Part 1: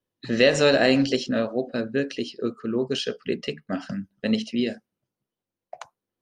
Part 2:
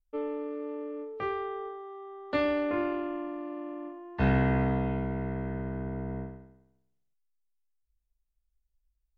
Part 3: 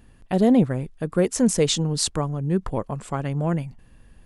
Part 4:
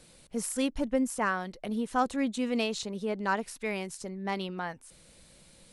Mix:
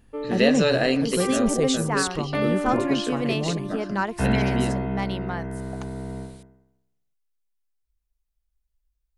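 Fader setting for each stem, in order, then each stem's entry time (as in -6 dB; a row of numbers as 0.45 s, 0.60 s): -3.0 dB, +2.0 dB, -4.5 dB, +2.5 dB; 0.00 s, 0.00 s, 0.00 s, 0.70 s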